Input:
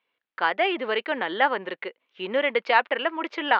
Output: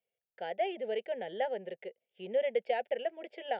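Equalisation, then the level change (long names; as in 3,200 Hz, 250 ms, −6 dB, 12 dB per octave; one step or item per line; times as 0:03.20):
flat-topped bell 1,700 Hz −15 dB
phaser with its sweep stopped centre 1,100 Hz, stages 6
phaser with its sweep stopped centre 2,700 Hz, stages 4
−1.0 dB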